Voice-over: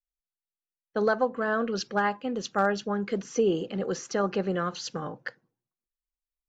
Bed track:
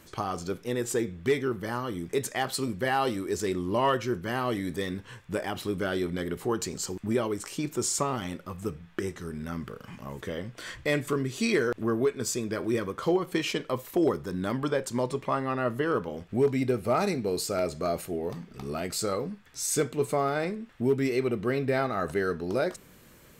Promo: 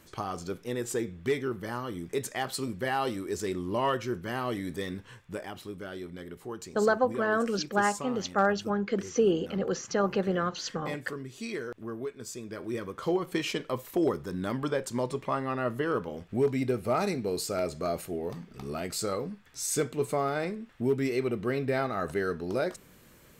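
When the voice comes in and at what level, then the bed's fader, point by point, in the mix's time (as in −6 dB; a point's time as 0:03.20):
5.80 s, 0.0 dB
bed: 0:04.99 −3 dB
0:05.79 −10.5 dB
0:12.27 −10.5 dB
0:13.22 −2 dB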